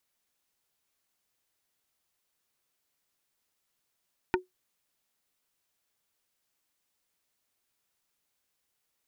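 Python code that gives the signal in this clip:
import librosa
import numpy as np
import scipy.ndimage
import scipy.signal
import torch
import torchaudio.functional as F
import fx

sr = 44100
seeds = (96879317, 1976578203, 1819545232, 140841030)

y = fx.strike_wood(sr, length_s=0.45, level_db=-19.5, body='plate', hz=367.0, decay_s=0.15, tilt_db=1.5, modes=5)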